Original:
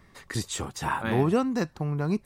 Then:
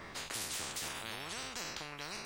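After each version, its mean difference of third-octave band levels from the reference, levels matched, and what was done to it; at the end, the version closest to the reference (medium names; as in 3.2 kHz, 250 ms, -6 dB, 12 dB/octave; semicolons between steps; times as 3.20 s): 16.0 dB: spectral sustain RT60 0.41 s; peaking EQ 12 kHz -12.5 dB 0.99 oct; peak limiter -18 dBFS, peak gain reduction 6.5 dB; spectrum-flattening compressor 10:1; trim -5.5 dB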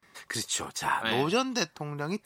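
5.0 dB: tilt shelf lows -3.5 dB, about 770 Hz; time-frequency box 1.04–1.67 s, 2.6–6.2 kHz +9 dB; gate with hold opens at -49 dBFS; high-pass 250 Hz 6 dB/octave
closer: second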